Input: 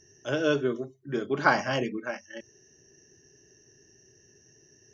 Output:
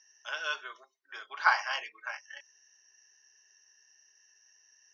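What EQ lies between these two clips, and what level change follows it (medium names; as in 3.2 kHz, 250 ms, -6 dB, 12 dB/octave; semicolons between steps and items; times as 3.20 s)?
elliptic band-pass 910–5500 Hz, stop band 70 dB; 0.0 dB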